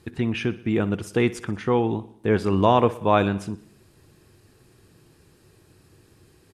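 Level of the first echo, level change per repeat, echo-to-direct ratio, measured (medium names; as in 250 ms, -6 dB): -18.0 dB, -4.5 dB, -16.0 dB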